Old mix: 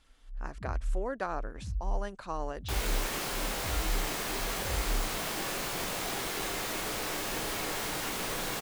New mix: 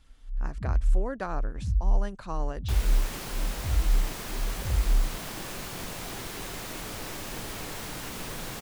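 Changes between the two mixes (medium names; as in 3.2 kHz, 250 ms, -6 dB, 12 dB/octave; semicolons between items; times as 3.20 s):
second sound: send -11.5 dB; master: add tone controls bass +9 dB, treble +1 dB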